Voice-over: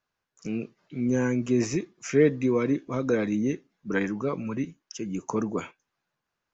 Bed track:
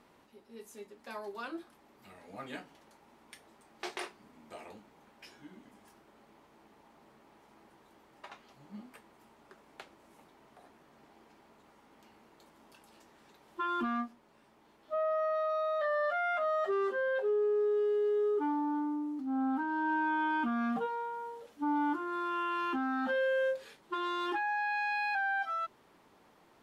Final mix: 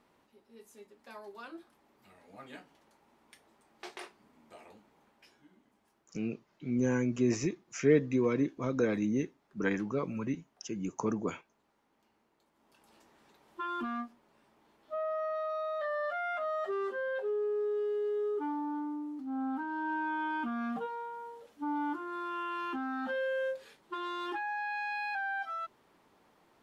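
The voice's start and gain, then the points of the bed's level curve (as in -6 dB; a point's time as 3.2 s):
5.70 s, -4.5 dB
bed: 5 s -5.5 dB
5.74 s -13 dB
12.51 s -13 dB
12.91 s -3 dB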